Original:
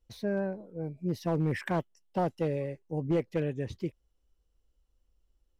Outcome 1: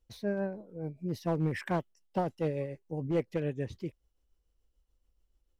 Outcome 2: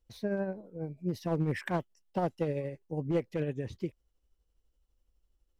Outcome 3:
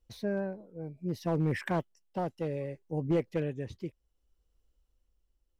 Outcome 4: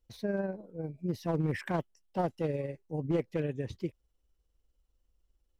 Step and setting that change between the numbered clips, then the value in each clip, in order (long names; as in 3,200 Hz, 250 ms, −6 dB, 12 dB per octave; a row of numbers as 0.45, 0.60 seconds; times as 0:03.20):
amplitude tremolo, speed: 6.9, 12, 0.65, 20 Hertz